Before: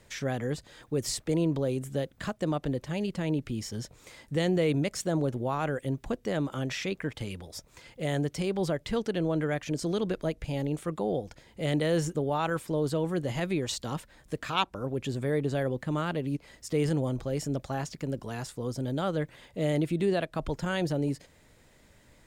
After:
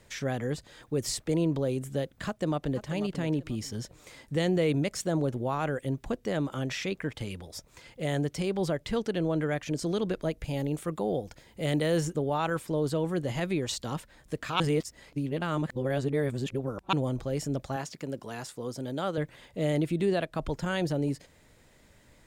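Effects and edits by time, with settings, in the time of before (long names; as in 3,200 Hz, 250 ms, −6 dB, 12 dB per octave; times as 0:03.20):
0:02.26–0:02.88: delay throw 490 ms, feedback 25%, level −11.5 dB
0:10.33–0:12.01: high-shelf EQ 12,000 Hz +9.5 dB
0:14.60–0:16.93: reverse
0:17.76–0:19.18: high-pass filter 240 Hz 6 dB per octave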